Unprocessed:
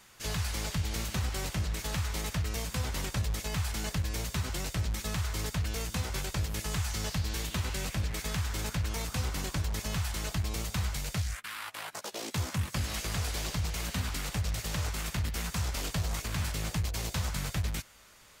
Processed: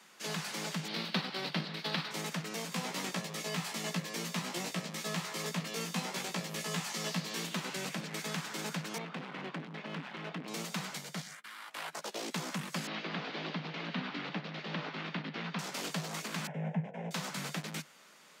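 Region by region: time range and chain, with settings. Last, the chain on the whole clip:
0.88–2.11 s: resonant high shelf 5.5 kHz -9 dB, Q 3 + transient shaper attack +6 dB, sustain -5 dB
2.70–7.45 s: band-stop 1.5 kHz + doubling 17 ms -4 dB
8.98–10.48 s: low-pass 3.1 kHz 24 dB/octave + overload inside the chain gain 32.5 dB
10.98–11.71 s: band-stop 2.6 kHz, Q 11 + upward expansion, over -42 dBFS
12.87–15.59 s: inverse Chebyshev low-pass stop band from 9 kHz, stop band 50 dB + peaking EQ 290 Hz +6 dB 0.39 oct
16.47–17.11 s: low-pass 2.4 kHz + tilt shelf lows +9 dB, about 1.1 kHz + static phaser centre 1.2 kHz, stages 6
whole clip: steep high-pass 150 Hz 96 dB/octave; treble shelf 8.7 kHz -9 dB

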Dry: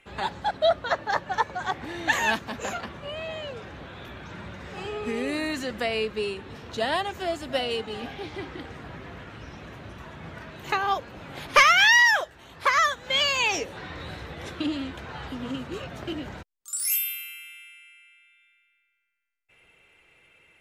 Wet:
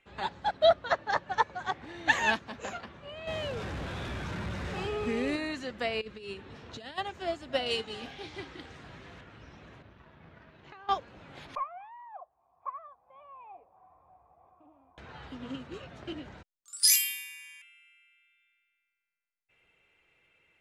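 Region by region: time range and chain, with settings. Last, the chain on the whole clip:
3.27–5.36 s: jump at every zero crossing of -39 dBFS + bass shelf 150 Hz +6.5 dB + level flattener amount 50%
6.01–6.98 s: dynamic bell 810 Hz, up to -7 dB, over -38 dBFS, Q 0.7 + compressor with a negative ratio -33 dBFS, ratio -0.5
7.66–9.21 s: treble shelf 3.4 kHz +11.5 dB + doubling 36 ms -13 dB
9.82–10.89 s: companding laws mixed up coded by A + distance through air 150 m + compression, threshold -38 dBFS
11.55–14.98 s: cascade formant filter a + bass shelf 81 Hz +11 dB
16.83–17.62 s: high-pass 1.1 kHz + resonant high shelf 2.9 kHz +13 dB, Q 1.5 + frequency shift -370 Hz
whole clip: low-pass 7.1 kHz 12 dB/octave; upward expansion 1.5:1, over -36 dBFS

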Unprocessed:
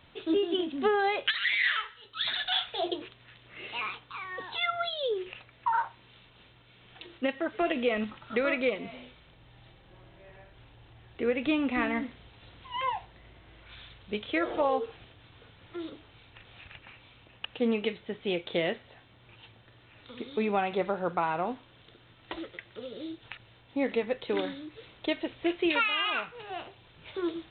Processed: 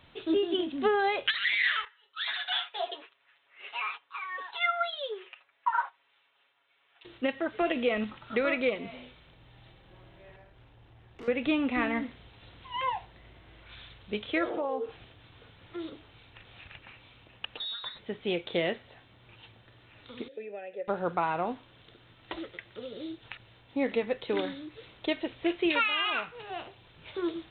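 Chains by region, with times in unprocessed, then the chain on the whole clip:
1.85–7.05 s: gate -44 dBFS, range -10 dB + band-pass 780–2800 Hz + comb 7.2 ms, depth 82%
10.36–11.28 s: treble shelf 2.8 kHz -7 dB + valve stage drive 41 dB, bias 0.45
14.49–14.89 s: compression 2.5:1, threshold -33 dBFS + high-pass 280 Hz + tilt EQ -3.5 dB/octave
17.57–17.99 s: compression 3:1, threshold -37 dBFS + frequency inversion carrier 4 kHz
20.28–20.88 s: vowel filter e + treble shelf 3 kHz -9 dB + three bands compressed up and down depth 40%
whole clip: none

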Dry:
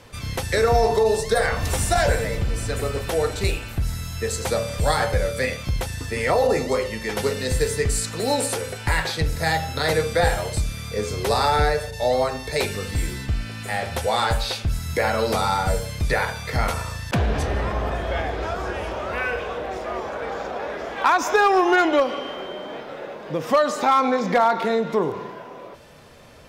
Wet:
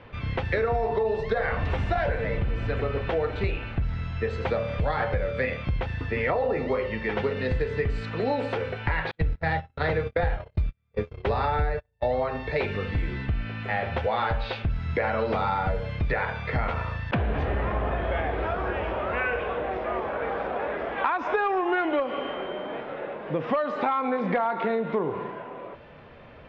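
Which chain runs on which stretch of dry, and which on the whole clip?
9.11–12.20 s: gate -25 dBFS, range -44 dB + bass shelf 88 Hz +10.5 dB
whole clip: low-pass 2.9 kHz 24 dB/octave; compression, threshold -22 dBFS

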